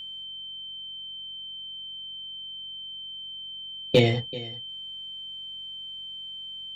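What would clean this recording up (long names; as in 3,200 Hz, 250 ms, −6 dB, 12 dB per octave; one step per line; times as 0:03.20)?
clipped peaks rebuilt −9 dBFS
hum removal 45.1 Hz, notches 5
notch filter 3,100 Hz, Q 30
echo removal 385 ms −18.5 dB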